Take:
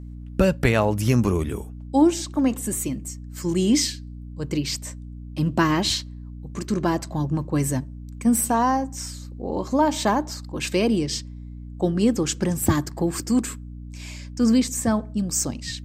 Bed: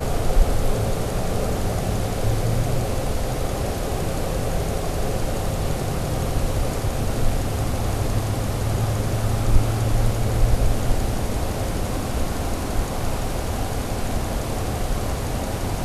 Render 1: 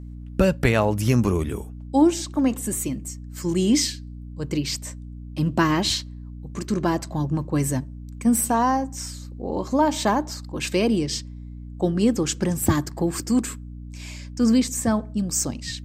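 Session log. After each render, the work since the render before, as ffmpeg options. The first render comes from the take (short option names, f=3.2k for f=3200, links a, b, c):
-af anull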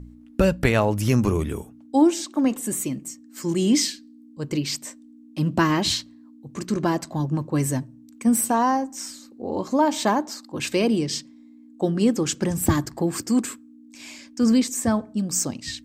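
-af "bandreject=f=60:t=h:w=4,bandreject=f=120:t=h:w=4,bandreject=f=180:t=h:w=4"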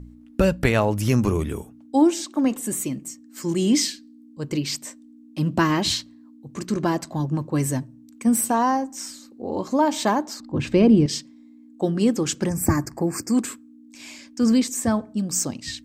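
-filter_complex "[0:a]asettb=1/sr,asplit=3[a][b][c];[a]atrim=end=10.404[d];[b]atrim=start=10.4:end=11.06,asetpts=PTS-STARTPTS,afade=t=in:d=0.004:c=qsin,afade=t=out:st=0.656:d=0.004:c=qsin,aemphasis=mode=reproduction:type=riaa[e];[c]atrim=start=11.056[f];[d][e]acrossfade=d=0.004:c1=hsin:c2=qsin[g];[g][f]acrossfade=d=0.004:c1=qsin:c2=hsin,asettb=1/sr,asplit=3[h][i][j];[h]atrim=end=12.494[k];[i]atrim=start=12.49:end=13.34,asetpts=PTS-STARTPTS,afade=t=in:d=0.004:c=qsin,afade=t=out:st=0.846:d=0.004:c=qsin,asuperstop=centerf=3400:order=8:qfactor=1.7[l];[j]atrim=start=13.336[m];[k][l]acrossfade=d=0.004:c1=hsin:c2=qsin[n];[n][m]acrossfade=d=0.004:c1=qsin:c2=hsin"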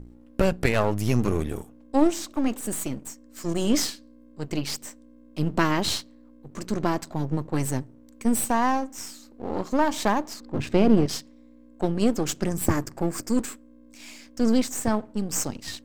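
-af "aeval=exprs='if(lt(val(0),0),0.251*val(0),val(0))':c=same"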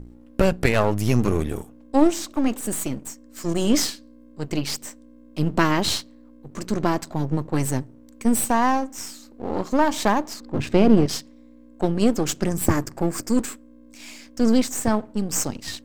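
-af "volume=3dB"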